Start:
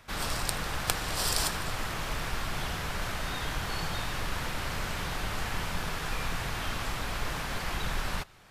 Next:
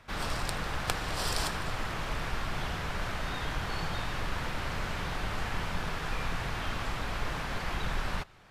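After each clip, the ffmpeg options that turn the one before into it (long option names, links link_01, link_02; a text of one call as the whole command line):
ffmpeg -i in.wav -af "lowpass=frequency=3600:poles=1" out.wav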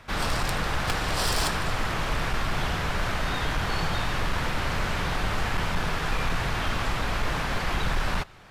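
ffmpeg -i in.wav -af "volume=26dB,asoftclip=hard,volume=-26dB,volume=7dB" out.wav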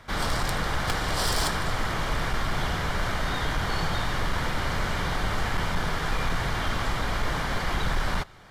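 ffmpeg -i in.wav -af "bandreject=frequency=2600:width=7.9" out.wav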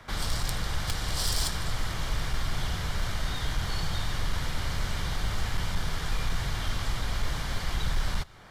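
ffmpeg -i in.wav -filter_complex "[0:a]acrossover=split=140|3000[link_01][link_02][link_03];[link_02]acompressor=threshold=-39dB:ratio=4[link_04];[link_01][link_04][link_03]amix=inputs=3:normalize=0" out.wav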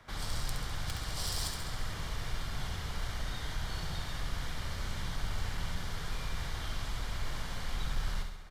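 ffmpeg -i in.wav -af "aecho=1:1:68|136|204|272|340|408|476|544:0.501|0.296|0.174|0.103|0.0607|0.0358|0.0211|0.0125,volume=-8dB" out.wav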